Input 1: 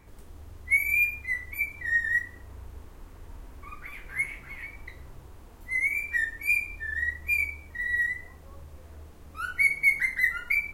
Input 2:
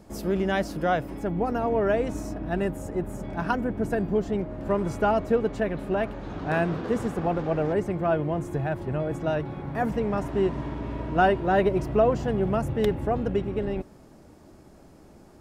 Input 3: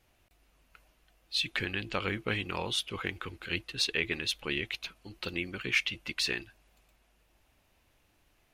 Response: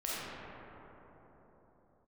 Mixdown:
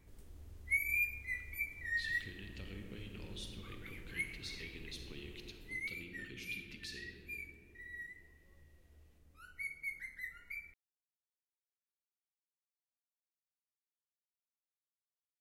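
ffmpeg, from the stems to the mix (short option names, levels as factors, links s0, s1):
-filter_complex "[0:a]volume=0.376,afade=t=out:st=5.41:d=0.67:silence=0.316228,asplit=2[s0][s1];[s1]volume=0.106[s2];[2:a]acrossover=split=410|3000[s3][s4][s5];[s4]acompressor=threshold=0.00562:ratio=6[s6];[s3][s6][s5]amix=inputs=3:normalize=0,adelay=650,volume=0.282,asplit=2[s7][s8];[s8]volume=0.335[s9];[s7]acompressor=threshold=0.00355:ratio=6,volume=1[s10];[3:a]atrim=start_sample=2205[s11];[s2][s9]amix=inputs=2:normalize=0[s12];[s12][s11]afir=irnorm=-1:irlink=0[s13];[s0][s10][s13]amix=inputs=3:normalize=0,equalizer=f=1000:w=0.92:g=-8.5"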